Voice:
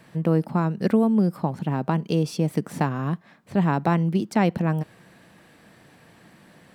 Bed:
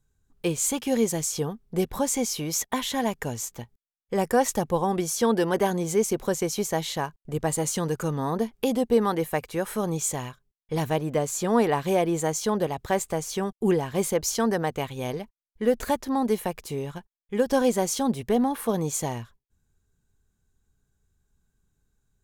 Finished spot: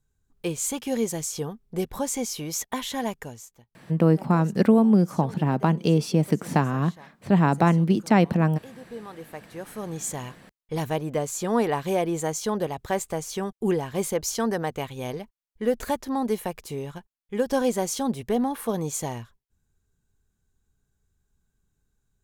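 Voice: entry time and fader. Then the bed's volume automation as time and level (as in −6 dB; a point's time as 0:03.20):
3.75 s, +2.0 dB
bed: 0:03.11 −2.5 dB
0:03.71 −20.5 dB
0:08.74 −20.5 dB
0:10.24 −1.5 dB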